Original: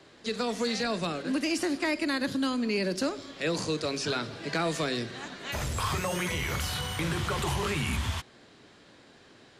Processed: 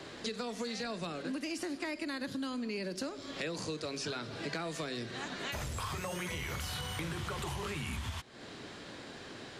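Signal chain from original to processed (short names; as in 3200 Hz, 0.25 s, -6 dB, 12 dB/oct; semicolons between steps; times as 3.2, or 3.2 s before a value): compressor 6:1, threshold -45 dBFS, peak gain reduction 18.5 dB; gain +8 dB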